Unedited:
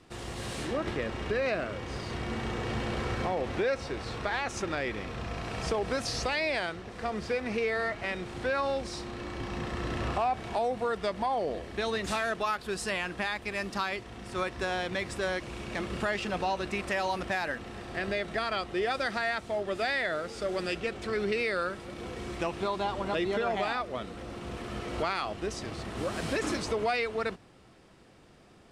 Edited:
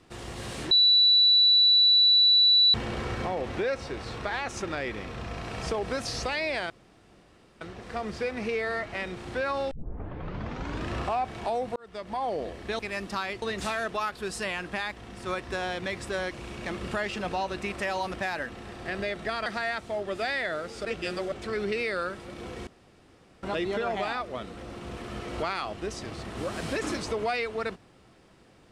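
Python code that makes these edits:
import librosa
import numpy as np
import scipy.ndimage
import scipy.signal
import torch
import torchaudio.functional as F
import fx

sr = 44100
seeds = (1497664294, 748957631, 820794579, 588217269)

y = fx.edit(x, sr, fx.bleep(start_s=0.71, length_s=2.03, hz=3950.0, db=-16.0),
    fx.insert_room_tone(at_s=6.7, length_s=0.91),
    fx.tape_start(start_s=8.8, length_s=1.2),
    fx.fade_in_span(start_s=10.85, length_s=0.51),
    fx.move(start_s=13.42, length_s=0.63, to_s=11.88),
    fx.cut(start_s=18.55, length_s=0.51),
    fx.reverse_span(start_s=20.45, length_s=0.47),
    fx.room_tone_fill(start_s=22.27, length_s=0.76), tone=tone)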